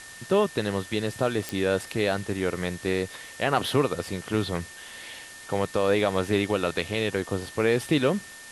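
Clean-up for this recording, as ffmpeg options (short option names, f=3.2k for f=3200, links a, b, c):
-af "adeclick=t=4,bandreject=f=1.8k:w=30,afftdn=nr=27:nf=-44"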